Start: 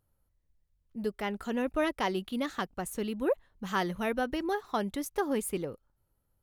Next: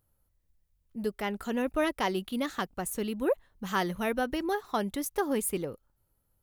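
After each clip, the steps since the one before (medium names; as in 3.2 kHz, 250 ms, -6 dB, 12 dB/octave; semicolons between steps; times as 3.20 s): treble shelf 10 kHz +8 dB; trim +1 dB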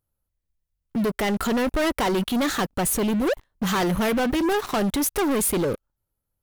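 waveshaping leveller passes 5; peak limiter -22.5 dBFS, peak gain reduction 6.5 dB; trim +3 dB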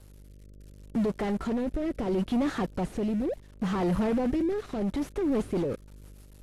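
one-bit delta coder 64 kbps, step -47 dBFS; mains buzz 50 Hz, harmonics 12, -46 dBFS -7 dB/octave; rotary cabinet horn 0.7 Hz, later 6.7 Hz, at 4.81 s; trim -2.5 dB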